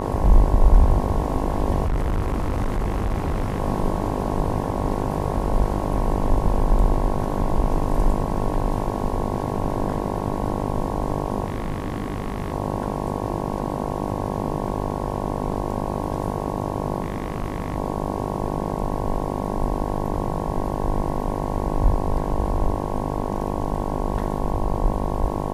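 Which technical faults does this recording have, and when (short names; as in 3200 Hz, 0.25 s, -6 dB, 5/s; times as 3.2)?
buzz 50 Hz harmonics 22 -27 dBFS
1.85–3.6 clipped -19 dBFS
11.46–12.52 clipped -21.5 dBFS
17.02–17.76 clipped -20 dBFS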